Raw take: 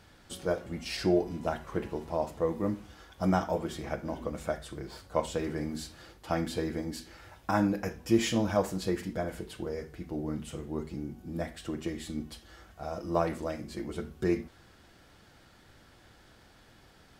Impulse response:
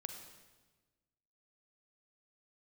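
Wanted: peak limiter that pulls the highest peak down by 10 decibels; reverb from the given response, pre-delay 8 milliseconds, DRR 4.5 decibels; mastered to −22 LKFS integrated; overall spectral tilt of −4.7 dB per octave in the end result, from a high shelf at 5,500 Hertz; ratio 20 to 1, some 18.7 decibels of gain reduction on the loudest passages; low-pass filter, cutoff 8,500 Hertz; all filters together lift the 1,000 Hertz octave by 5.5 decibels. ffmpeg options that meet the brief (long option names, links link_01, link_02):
-filter_complex "[0:a]lowpass=8500,equalizer=frequency=1000:width_type=o:gain=7.5,highshelf=frequency=5500:gain=-6.5,acompressor=threshold=-37dB:ratio=20,alimiter=level_in=7.5dB:limit=-24dB:level=0:latency=1,volume=-7.5dB,asplit=2[link_01][link_02];[1:a]atrim=start_sample=2205,adelay=8[link_03];[link_02][link_03]afir=irnorm=-1:irlink=0,volume=-2dB[link_04];[link_01][link_04]amix=inputs=2:normalize=0,volume=22dB"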